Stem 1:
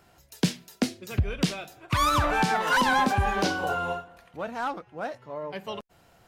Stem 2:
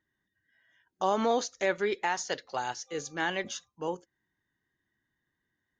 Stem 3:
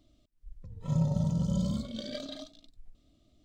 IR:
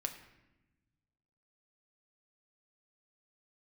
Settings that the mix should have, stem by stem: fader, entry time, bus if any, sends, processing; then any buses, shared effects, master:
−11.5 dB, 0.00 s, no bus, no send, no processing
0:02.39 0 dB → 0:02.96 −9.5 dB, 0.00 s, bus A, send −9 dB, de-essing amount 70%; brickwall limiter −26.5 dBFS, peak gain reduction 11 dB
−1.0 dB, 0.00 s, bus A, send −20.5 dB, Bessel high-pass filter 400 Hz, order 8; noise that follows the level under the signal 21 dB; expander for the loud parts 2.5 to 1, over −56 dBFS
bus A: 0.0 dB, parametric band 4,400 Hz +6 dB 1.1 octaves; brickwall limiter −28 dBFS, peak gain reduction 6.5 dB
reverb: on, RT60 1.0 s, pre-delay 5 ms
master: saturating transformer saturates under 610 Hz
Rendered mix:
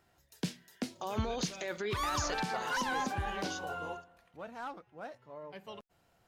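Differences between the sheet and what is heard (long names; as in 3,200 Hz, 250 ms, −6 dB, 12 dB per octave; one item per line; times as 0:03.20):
stem 2: send off
stem 3 −1.0 dB → −10.5 dB
master: missing saturating transformer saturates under 610 Hz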